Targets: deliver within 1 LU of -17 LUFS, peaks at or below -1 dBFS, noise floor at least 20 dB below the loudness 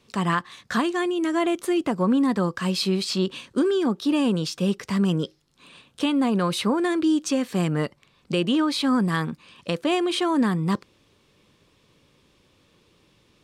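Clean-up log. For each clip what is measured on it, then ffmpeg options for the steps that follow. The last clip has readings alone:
loudness -24.0 LUFS; peak level -9.5 dBFS; loudness target -17.0 LUFS
-> -af "volume=2.24"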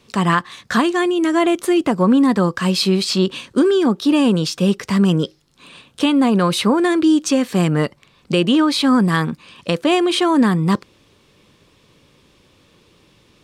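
loudness -17.0 LUFS; peak level -2.5 dBFS; noise floor -55 dBFS

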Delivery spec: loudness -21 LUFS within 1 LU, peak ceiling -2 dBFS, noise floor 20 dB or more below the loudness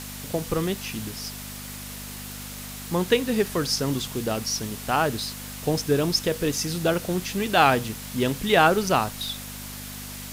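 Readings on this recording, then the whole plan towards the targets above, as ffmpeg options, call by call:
hum 50 Hz; highest harmonic 250 Hz; hum level -38 dBFS; noise floor -37 dBFS; noise floor target -45 dBFS; loudness -24.5 LUFS; peak level -4.5 dBFS; loudness target -21.0 LUFS
-> -af "bandreject=f=50:t=h:w=4,bandreject=f=100:t=h:w=4,bandreject=f=150:t=h:w=4,bandreject=f=200:t=h:w=4,bandreject=f=250:t=h:w=4"
-af "afftdn=nr=8:nf=-37"
-af "volume=1.5,alimiter=limit=0.794:level=0:latency=1"

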